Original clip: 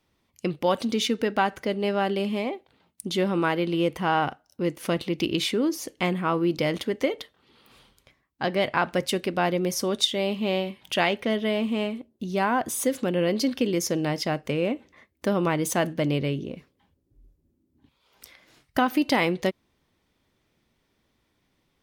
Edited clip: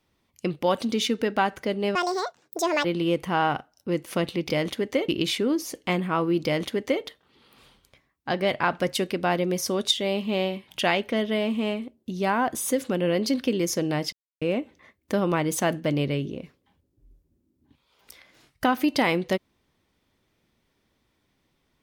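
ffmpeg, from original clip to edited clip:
ffmpeg -i in.wav -filter_complex "[0:a]asplit=7[link_01][link_02][link_03][link_04][link_05][link_06][link_07];[link_01]atrim=end=1.954[link_08];[link_02]atrim=start=1.95:end=3.57,asetpts=PTS-STARTPTS,asetrate=79821,aresample=44100[link_09];[link_03]atrim=start=3.566:end=5.222[link_10];[link_04]atrim=start=6.578:end=7.172[link_11];[link_05]atrim=start=5.218:end=14.26,asetpts=PTS-STARTPTS,afade=type=out:start_time=9.038:duration=0.004:curve=hsin[link_12];[link_06]atrim=start=14.26:end=14.55,asetpts=PTS-STARTPTS,volume=0[link_13];[link_07]atrim=start=14.55,asetpts=PTS-STARTPTS,afade=type=in:duration=0.004:curve=hsin[link_14];[link_08][link_09]acrossfade=duration=0.004:curve1=hsin:curve2=hsin[link_15];[link_15][link_10]acrossfade=duration=0.004:curve1=hsin:curve2=hsin[link_16];[link_16][link_11]acrossfade=duration=0.004:curve1=hsin:curve2=hsin[link_17];[link_12][link_13][link_14]concat=n=3:v=0:a=1[link_18];[link_17][link_18]acrossfade=duration=0.004:curve1=hsin:curve2=hsin" out.wav

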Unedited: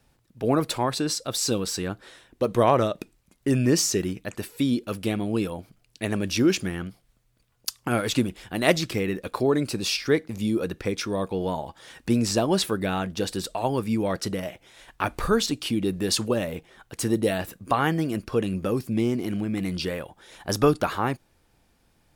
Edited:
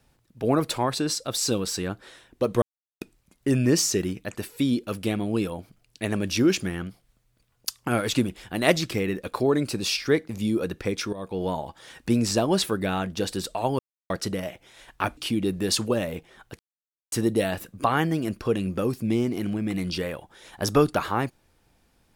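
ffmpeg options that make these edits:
ffmpeg -i in.wav -filter_complex "[0:a]asplit=8[link_01][link_02][link_03][link_04][link_05][link_06][link_07][link_08];[link_01]atrim=end=2.62,asetpts=PTS-STARTPTS,afade=type=out:start_time=2.616:duration=0.004:curve=hsin[link_09];[link_02]atrim=start=2.62:end=3.01,asetpts=PTS-STARTPTS,volume=0[link_10];[link_03]atrim=start=3.01:end=11.13,asetpts=PTS-STARTPTS,afade=type=in:duration=0.004:curve=hsin,afade=type=out:start_time=8.116:duration=0.004:curve=hsin:silence=0.199526[link_11];[link_04]atrim=start=11.13:end=13.79,asetpts=PTS-STARTPTS,afade=type=in:duration=0.31:silence=0.199526,afade=type=out:start_time=2.656:duration=0.004:curve=hsin[link_12];[link_05]atrim=start=13.79:end=14.1,asetpts=PTS-STARTPTS,volume=0[link_13];[link_06]atrim=start=14.1:end=15.172,asetpts=PTS-STARTPTS,afade=type=in:duration=0.004:curve=hsin[link_14];[link_07]atrim=start=15.568:end=16.99,asetpts=PTS-STARTPTS,afade=type=out:start_time=1.418:duration=0.004:curve=hsin,apad=pad_dur=0.53[link_15];[link_08]atrim=start=16.99,asetpts=PTS-STARTPTS,afade=type=in:duration=0.004:curve=hsin[link_16];[link_09][link_10][link_11][link_12][link_13][link_14]concat=n=6:v=0:a=1[link_17];[link_15][link_16]concat=n=2:v=0:a=1[link_18];[link_17][link_18]acrossfade=duration=0.004:curve1=hsin:curve2=hsin" out.wav

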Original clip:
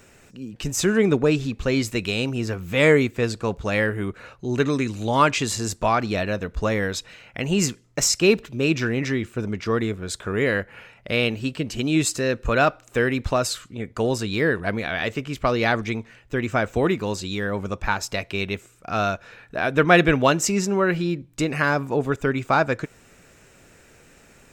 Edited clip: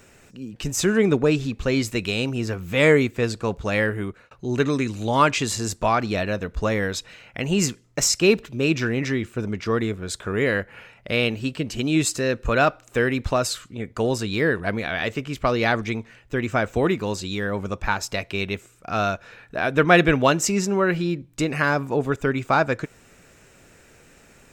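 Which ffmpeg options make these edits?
ffmpeg -i in.wav -filter_complex "[0:a]asplit=2[link_01][link_02];[link_01]atrim=end=4.31,asetpts=PTS-STARTPTS,afade=type=out:start_time=3.89:duration=0.42:curve=qsin[link_03];[link_02]atrim=start=4.31,asetpts=PTS-STARTPTS,afade=type=in:duration=0.004:curve=hsin[link_04];[link_03][link_04]concat=n=2:v=0:a=1" out.wav

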